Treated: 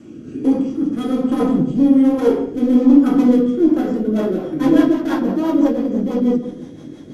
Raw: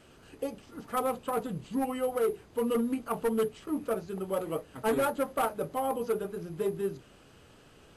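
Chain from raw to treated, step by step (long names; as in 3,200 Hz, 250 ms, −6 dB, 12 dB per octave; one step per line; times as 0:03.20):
gliding playback speed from 94% → 129%
octave-band graphic EQ 125/250/4,000/8,000 Hz +7/+10/−8/−8 dB
in parallel at −1 dB: downward compressor, threshold −33 dBFS, peak gain reduction 15.5 dB
on the sum: asymmetric clip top −26.5 dBFS
low-pass filter 11,000 Hz 12 dB per octave
parametric band 6,300 Hz +14 dB 1 octave
convolution reverb RT60 0.95 s, pre-delay 3 ms, DRR −4 dB
rotating-speaker cabinet horn 1.2 Hz, later 6 Hz, at 0:03.70
hollow resonant body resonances 290/3,300 Hz, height 16 dB, ringing for 45 ms
level −1.5 dB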